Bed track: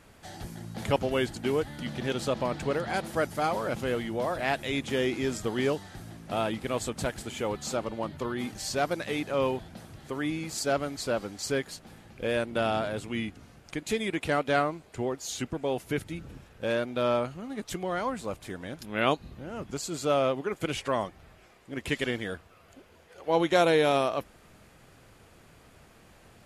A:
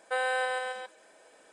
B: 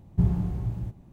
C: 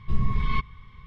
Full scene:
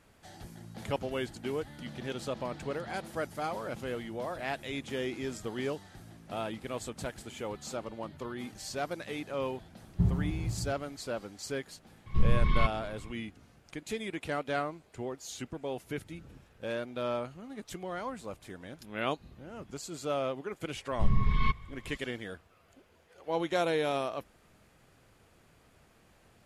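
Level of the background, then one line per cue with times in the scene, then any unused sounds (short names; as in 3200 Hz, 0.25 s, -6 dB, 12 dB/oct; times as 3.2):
bed track -7 dB
9.81 add B -4.5 dB
12.06 add C -1 dB
20.91 add C -2 dB
not used: A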